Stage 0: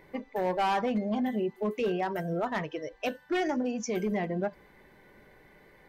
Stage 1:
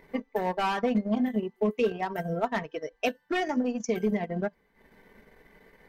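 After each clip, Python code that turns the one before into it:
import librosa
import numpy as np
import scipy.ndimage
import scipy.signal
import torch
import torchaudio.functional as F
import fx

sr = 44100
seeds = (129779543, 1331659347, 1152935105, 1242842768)

y = x + 0.44 * np.pad(x, (int(4.4 * sr / 1000.0), 0))[:len(x)]
y = fx.transient(y, sr, attack_db=4, sustain_db=-12)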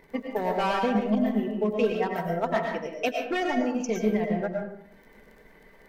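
y = fx.dmg_crackle(x, sr, seeds[0], per_s=20.0, level_db=-46.0)
y = fx.rev_freeverb(y, sr, rt60_s=0.71, hf_ratio=0.5, predelay_ms=70, drr_db=1.5)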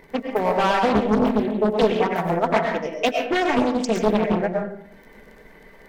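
y = fx.doppler_dist(x, sr, depth_ms=0.89)
y = y * 10.0 ** (6.5 / 20.0)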